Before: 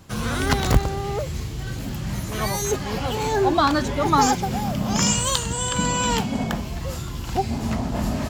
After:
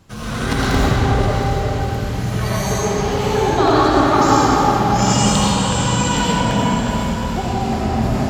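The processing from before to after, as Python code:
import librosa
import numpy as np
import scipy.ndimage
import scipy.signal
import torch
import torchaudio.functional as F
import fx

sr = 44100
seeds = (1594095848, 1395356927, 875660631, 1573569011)

p1 = fx.high_shelf(x, sr, hz=10000.0, db=-6.0)
p2 = p1 + fx.echo_alternate(p1, sr, ms=359, hz=1500.0, feedback_pct=57, wet_db=-6.0, dry=0)
p3 = fx.rev_freeverb(p2, sr, rt60_s=3.8, hf_ratio=0.7, predelay_ms=45, drr_db=-8.0)
y = F.gain(torch.from_numpy(p3), -3.0).numpy()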